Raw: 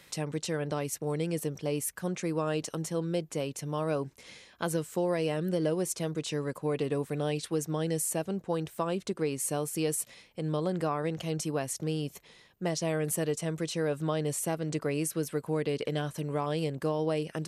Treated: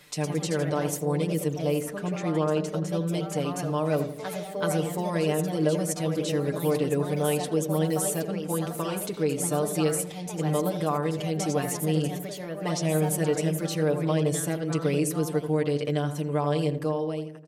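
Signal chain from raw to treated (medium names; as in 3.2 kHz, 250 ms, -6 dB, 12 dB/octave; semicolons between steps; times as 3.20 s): fade out at the end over 0.78 s; 1.79–3.09 s: low-pass 3.4 kHz 6 dB/octave; ever faster or slower copies 124 ms, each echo +2 st, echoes 2, each echo -6 dB; wow and flutter 23 cents; comb 6.7 ms, depth 86%; on a send: filtered feedback delay 83 ms, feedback 49%, low-pass 1.2 kHz, level -8.5 dB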